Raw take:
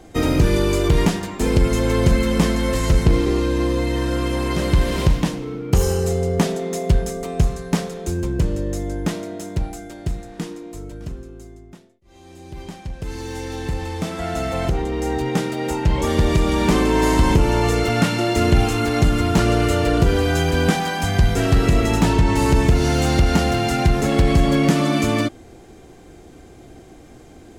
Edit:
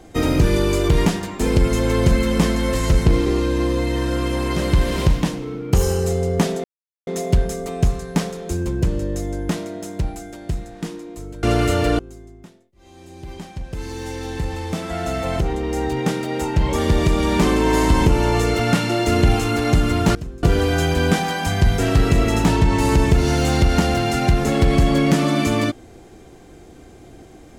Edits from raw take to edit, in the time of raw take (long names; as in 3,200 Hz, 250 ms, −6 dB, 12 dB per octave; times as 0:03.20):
0:06.64: splice in silence 0.43 s
0:11.00–0:11.28: swap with 0:19.44–0:20.00